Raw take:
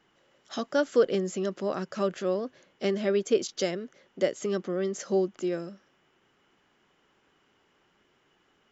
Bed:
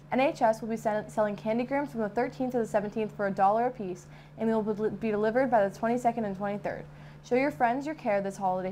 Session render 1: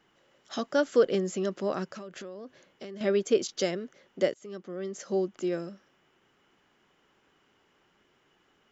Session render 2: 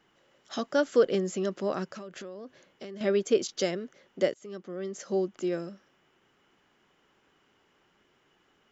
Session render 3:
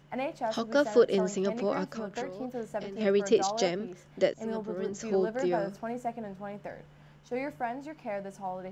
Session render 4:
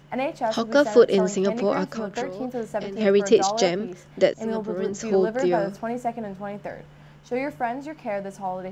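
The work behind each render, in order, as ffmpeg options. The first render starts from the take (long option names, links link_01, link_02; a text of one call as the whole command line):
ffmpeg -i in.wav -filter_complex "[0:a]asettb=1/sr,asplit=3[link_01][link_02][link_03];[link_01]atrim=end=1.864[link_04];[link_02]atrim=start=1.86:end=3.01,asetpts=PTS-STARTPTS,afade=type=in:duration=0.004:curve=qsin,afade=type=out:start_time=1.146:duration=0.004:curve=qsin,acompressor=threshold=-38dB:ratio=8:attack=3.2:release=140:knee=1:detection=peak[link_05];[link_03]atrim=start=3.006[link_06];[link_04][link_05]acrossfade=duration=0.004:curve1=hsin:curve2=qsin[link_07];[link_07][link_06]acrossfade=duration=0.004:curve1=qsin:curve2=hsin,asplit=2[link_08][link_09];[link_08]atrim=end=4.34,asetpts=PTS-STARTPTS,afade=type=out:start_time=4.336:duration=0.004:curve=hsin:silence=0.11885[link_10];[link_09]atrim=start=4.34,asetpts=PTS-STARTPTS,afade=type=in:duration=1.2:silence=0.11885[link_11];[link_10][link_11]concat=n=2:v=0:a=1" out.wav
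ffmpeg -i in.wav -af anull out.wav
ffmpeg -i in.wav -i bed.wav -filter_complex "[1:a]volume=-8dB[link_01];[0:a][link_01]amix=inputs=2:normalize=0" out.wav
ffmpeg -i in.wav -af "volume=7dB" out.wav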